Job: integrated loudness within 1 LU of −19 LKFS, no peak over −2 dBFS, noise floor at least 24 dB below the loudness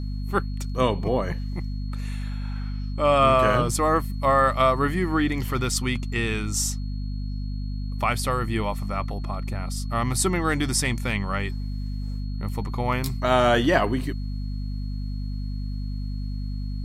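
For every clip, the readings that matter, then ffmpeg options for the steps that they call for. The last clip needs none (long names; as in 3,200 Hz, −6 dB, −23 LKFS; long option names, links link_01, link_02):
mains hum 50 Hz; hum harmonics up to 250 Hz; level of the hum −27 dBFS; interfering tone 4,300 Hz; level of the tone −51 dBFS; integrated loudness −25.5 LKFS; sample peak −5.0 dBFS; target loudness −19.0 LKFS
→ -af "bandreject=frequency=50:width_type=h:width=4,bandreject=frequency=100:width_type=h:width=4,bandreject=frequency=150:width_type=h:width=4,bandreject=frequency=200:width_type=h:width=4,bandreject=frequency=250:width_type=h:width=4"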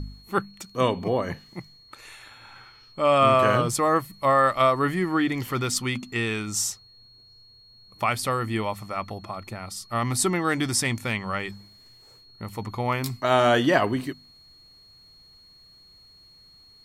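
mains hum none found; interfering tone 4,300 Hz; level of the tone −51 dBFS
→ -af "bandreject=frequency=4300:width=30"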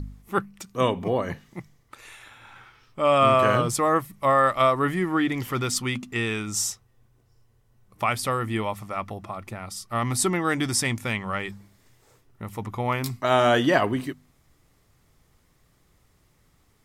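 interfering tone none found; integrated loudness −24.0 LKFS; sample peak −5.5 dBFS; target loudness −19.0 LKFS
→ -af "volume=5dB,alimiter=limit=-2dB:level=0:latency=1"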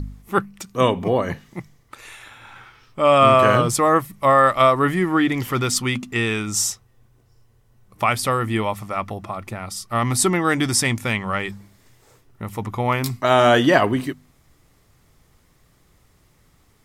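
integrated loudness −19.5 LKFS; sample peak −2.0 dBFS; background noise floor −58 dBFS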